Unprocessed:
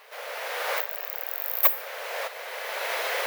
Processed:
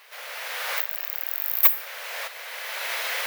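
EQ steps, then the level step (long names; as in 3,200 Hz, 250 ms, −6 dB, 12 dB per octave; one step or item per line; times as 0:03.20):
tilt shelving filter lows −9 dB, about 740 Hz
−5.5 dB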